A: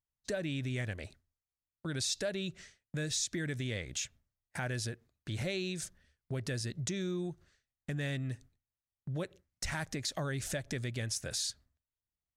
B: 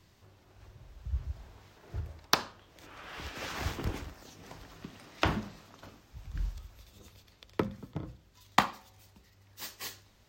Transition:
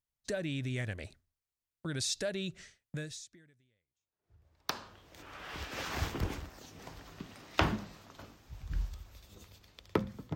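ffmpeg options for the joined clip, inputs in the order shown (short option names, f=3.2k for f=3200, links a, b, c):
-filter_complex "[0:a]apad=whole_dur=10.35,atrim=end=10.35,atrim=end=4.89,asetpts=PTS-STARTPTS[a];[1:a]atrim=start=0.57:end=7.99,asetpts=PTS-STARTPTS[b];[a][b]acrossfade=d=1.96:c1=exp:c2=exp"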